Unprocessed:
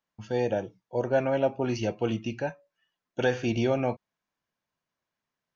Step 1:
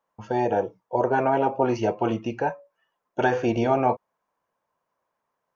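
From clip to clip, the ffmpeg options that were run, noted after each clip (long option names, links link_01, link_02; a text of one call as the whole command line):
ffmpeg -i in.wav -af "equalizer=frequency=500:width_type=o:width=1:gain=10,equalizer=frequency=1000:width_type=o:width=1:gain=12,equalizer=frequency=4000:width_type=o:width=1:gain=-5,afftfilt=real='re*lt(hypot(re,im),1.12)':imag='im*lt(hypot(re,im),1.12)':win_size=1024:overlap=0.75" out.wav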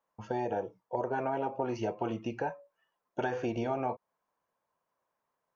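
ffmpeg -i in.wav -af "acompressor=threshold=-26dB:ratio=3,volume=-4.5dB" out.wav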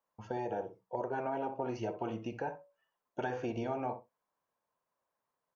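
ffmpeg -i in.wav -filter_complex "[0:a]asplit=2[link_01][link_02];[link_02]adelay=63,lowpass=frequency=1100:poles=1,volume=-9dB,asplit=2[link_03][link_04];[link_04]adelay=63,lowpass=frequency=1100:poles=1,volume=0.15[link_05];[link_01][link_03][link_05]amix=inputs=3:normalize=0,volume=-4dB" out.wav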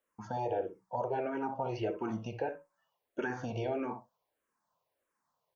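ffmpeg -i in.wav -filter_complex "[0:a]asplit=2[link_01][link_02];[link_02]alimiter=level_in=6.5dB:limit=-24dB:level=0:latency=1:release=30,volume=-6.5dB,volume=-2dB[link_03];[link_01][link_03]amix=inputs=2:normalize=0,asplit=2[link_04][link_05];[link_05]afreqshift=-1.6[link_06];[link_04][link_06]amix=inputs=2:normalize=1,volume=1dB" out.wav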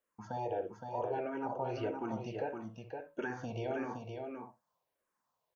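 ffmpeg -i in.wav -af "aecho=1:1:516:0.531,volume=-3dB" out.wav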